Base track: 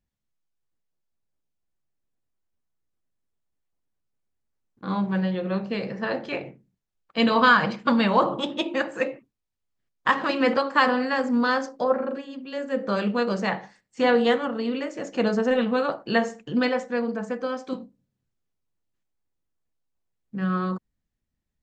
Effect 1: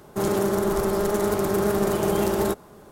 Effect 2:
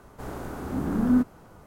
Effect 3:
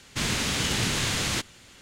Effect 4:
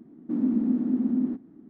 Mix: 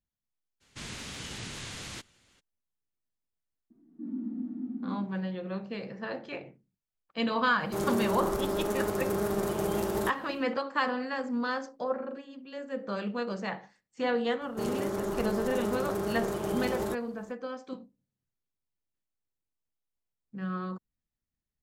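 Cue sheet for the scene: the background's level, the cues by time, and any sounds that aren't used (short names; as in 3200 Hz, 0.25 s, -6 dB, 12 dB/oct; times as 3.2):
base track -9 dB
0.6 add 3 -14 dB, fades 0.02 s + spectral gate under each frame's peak -30 dB strong
3.7 add 4 -11.5 dB + median-filter separation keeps harmonic
7.56 add 1 -7.5 dB, fades 0.10 s
14.41 add 1 -9.5 dB + high shelf 11000 Hz -5.5 dB
not used: 2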